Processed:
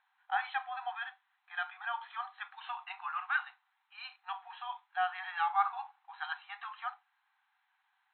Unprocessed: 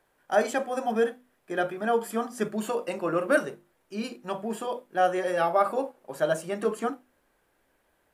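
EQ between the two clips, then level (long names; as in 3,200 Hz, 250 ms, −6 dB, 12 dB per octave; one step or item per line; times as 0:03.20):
linear-phase brick-wall band-pass 730–4,200 Hz
−3.5 dB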